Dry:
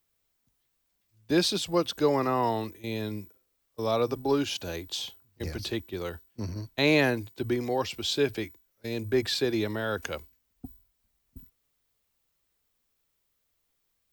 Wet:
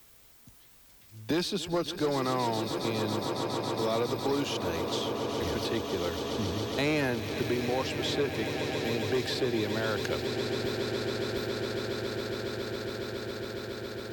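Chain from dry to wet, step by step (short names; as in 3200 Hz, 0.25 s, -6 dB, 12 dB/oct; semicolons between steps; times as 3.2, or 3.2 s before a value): added harmonics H 5 -16 dB, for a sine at -11 dBFS; swelling echo 0.138 s, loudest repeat 8, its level -14.5 dB; three-band squash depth 70%; gain -6 dB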